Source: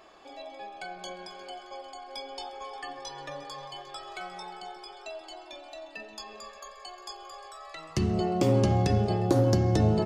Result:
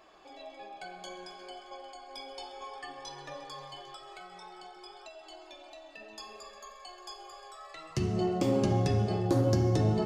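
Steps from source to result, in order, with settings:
0:03.93–0:06.01: downward compressor, threshold −41 dBFS, peak gain reduction 6.5 dB
flanger 0.59 Hz, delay 3.4 ms, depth 7.7 ms, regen −51%
reverb whose tail is shaped and stops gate 430 ms falling, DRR 7.5 dB

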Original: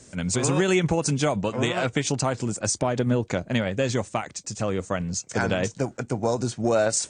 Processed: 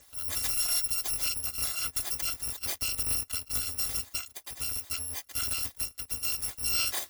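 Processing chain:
samples in bit-reversed order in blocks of 256 samples
level −7.5 dB

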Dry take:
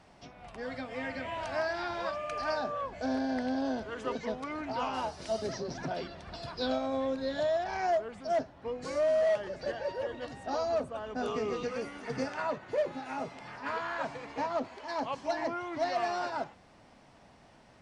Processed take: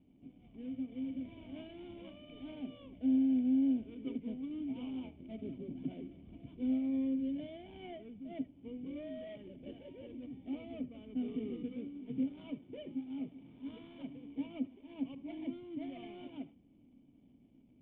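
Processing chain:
running median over 25 samples
formant resonators in series i
convolution reverb, pre-delay 55 ms, DRR 16 dB
level +4.5 dB

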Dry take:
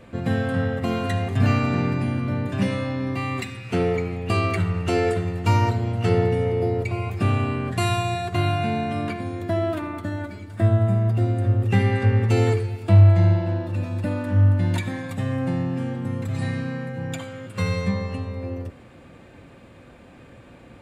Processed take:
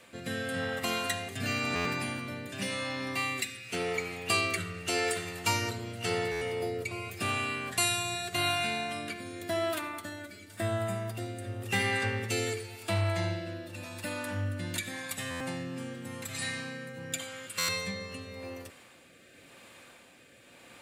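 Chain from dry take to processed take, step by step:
spectral tilt +4.5 dB per octave
rotating-speaker cabinet horn 0.9 Hz
buffer that repeats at 0:01.75/0:06.31/0:15.30/0:17.58, samples 512, times 8
level −2.5 dB

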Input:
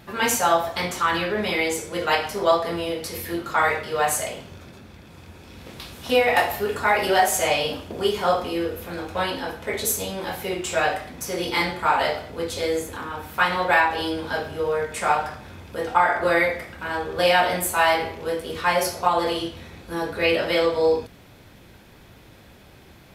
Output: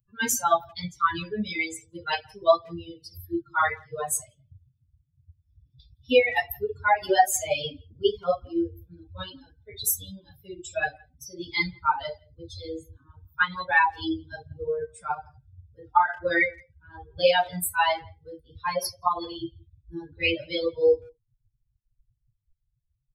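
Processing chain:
spectral dynamics exaggerated over time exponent 3
far-end echo of a speakerphone 170 ms, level −28 dB
level +4 dB

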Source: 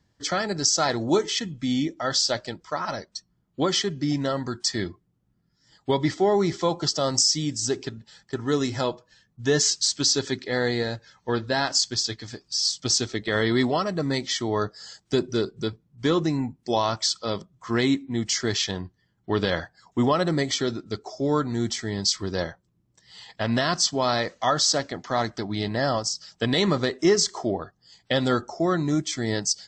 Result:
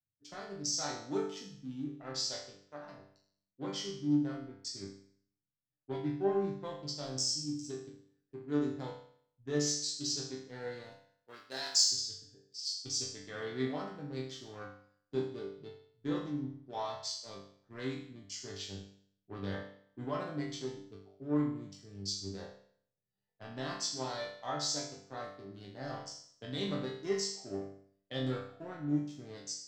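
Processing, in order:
adaptive Wiener filter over 41 samples
0:10.92–0:11.87: RIAA equalisation recording
resonators tuned to a chord G2 sus4, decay 0.71 s
in parallel at −12 dB: soft clipping −34.5 dBFS, distortion −13 dB
on the sum: multiband upward and downward expander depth 40%
level +2 dB

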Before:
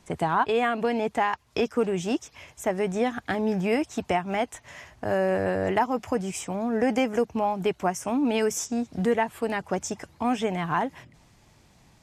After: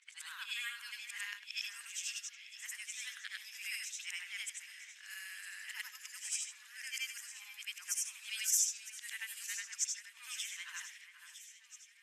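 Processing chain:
every overlapping window played backwards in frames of 205 ms
low-pass that shuts in the quiet parts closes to 2,300 Hz, open at −25 dBFS
inverse Chebyshev high-pass filter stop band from 660 Hz, stop band 50 dB
first difference
delay that swaps between a low-pass and a high-pass 479 ms, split 2,500 Hz, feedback 70%, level −10.5 dB
level +6.5 dB

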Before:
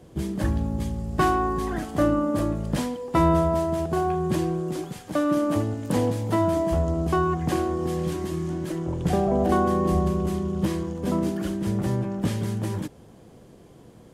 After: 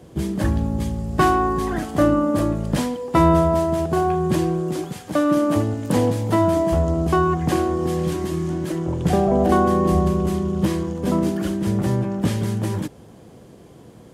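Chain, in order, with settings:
high-pass filter 49 Hz
level +4.5 dB

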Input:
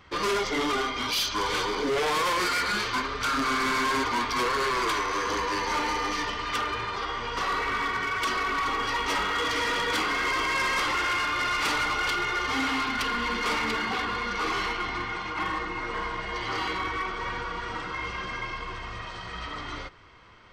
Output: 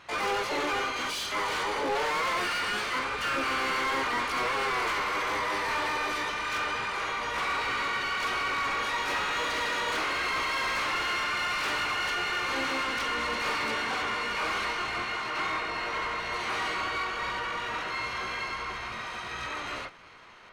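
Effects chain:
pitch-shifted copies added +4 semitones −5 dB, +12 semitones −2 dB
mid-hump overdrive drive 15 dB, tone 1,900 Hz, clips at −14 dBFS
level −6.5 dB

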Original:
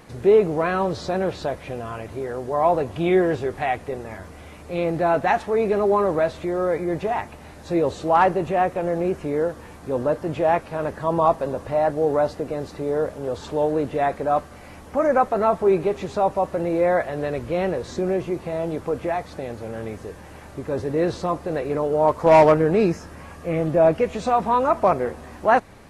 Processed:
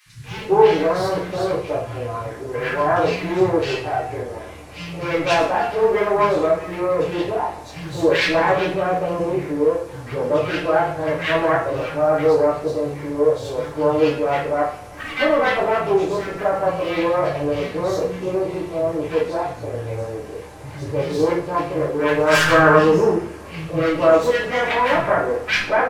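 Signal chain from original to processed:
phase distortion by the signal itself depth 0.35 ms
three-band delay without the direct sound highs, lows, mids 60/240 ms, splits 190/1,600 Hz
coupled-rooms reverb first 0.45 s, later 2.3 s, from −26 dB, DRR −8 dB
level −4.5 dB

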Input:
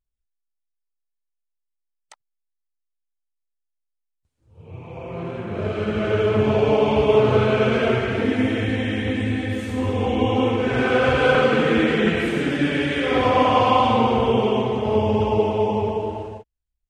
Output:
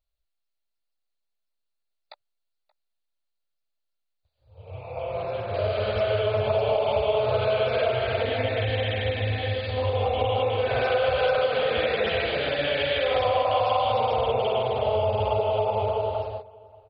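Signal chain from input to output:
drawn EQ curve 110 Hz 0 dB, 170 Hz −16 dB, 320 Hz −17 dB, 590 Hz +10 dB, 980 Hz −1 dB, 2,000 Hz −3 dB, 3,700 Hz +7 dB
downward compressor 4 to 1, threshold −21 dBFS, peak gain reduction 10 dB
0:05.54–0:06.20: centre clipping without the shift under −33.5 dBFS
slap from a distant wall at 99 metres, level −22 dB
MP2 32 kbit/s 44,100 Hz

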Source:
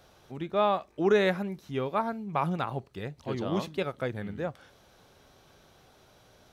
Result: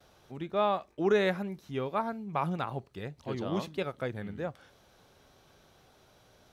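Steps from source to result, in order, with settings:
noise gate with hold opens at −50 dBFS
level −2.5 dB

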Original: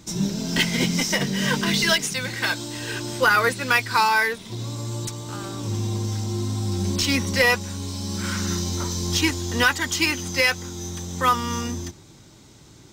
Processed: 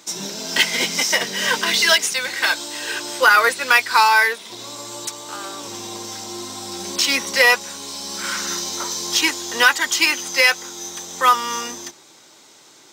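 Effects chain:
high-pass filter 530 Hz 12 dB per octave
level +5.5 dB

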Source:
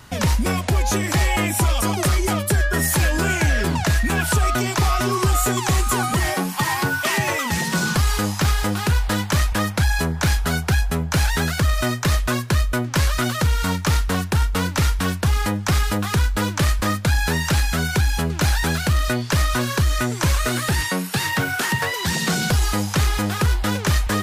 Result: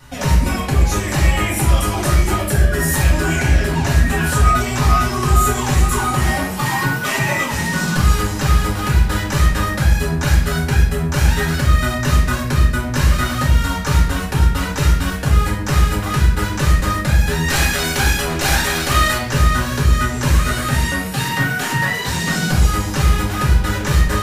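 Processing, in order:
0:17.48–0:19.18: ceiling on every frequency bin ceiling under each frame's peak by 17 dB
convolution reverb RT60 0.70 s, pre-delay 3 ms, DRR −5.5 dB
level −6 dB

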